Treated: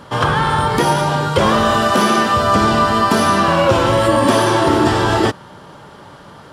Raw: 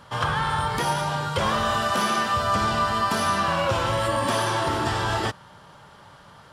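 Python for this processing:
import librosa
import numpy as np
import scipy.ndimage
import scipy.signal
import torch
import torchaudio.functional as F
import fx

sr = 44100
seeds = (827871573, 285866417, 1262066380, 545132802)

y = fx.peak_eq(x, sr, hz=320.0, db=9.5, octaves=1.5)
y = y * librosa.db_to_amplitude(7.0)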